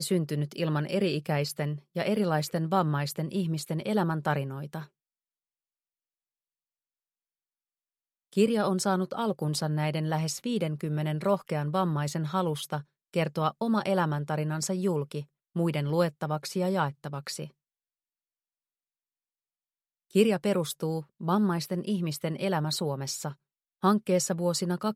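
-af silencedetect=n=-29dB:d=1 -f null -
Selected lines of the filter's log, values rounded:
silence_start: 4.79
silence_end: 8.37 | silence_duration: 3.58
silence_start: 17.44
silence_end: 20.15 | silence_duration: 2.72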